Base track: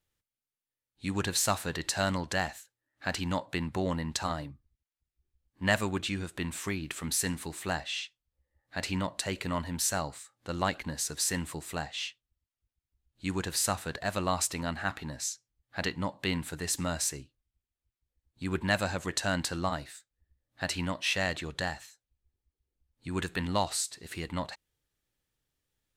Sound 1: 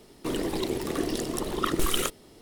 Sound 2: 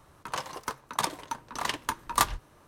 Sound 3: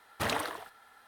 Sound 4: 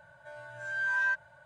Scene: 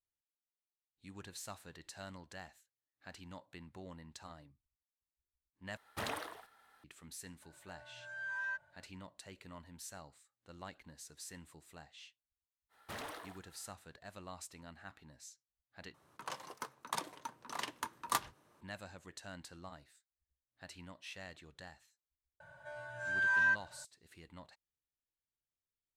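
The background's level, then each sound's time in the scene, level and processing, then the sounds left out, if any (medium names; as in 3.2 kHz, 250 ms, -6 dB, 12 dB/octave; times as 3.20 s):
base track -19.5 dB
5.77 s: replace with 3 -8.5 dB
7.42 s: add 4 -11 dB
12.69 s: add 3 -9 dB, fades 0.05 s + saturation -31.5 dBFS
15.94 s: replace with 2 -10 dB + high-pass 130 Hz
22.40 s: add 4 -1 dB
not used: 1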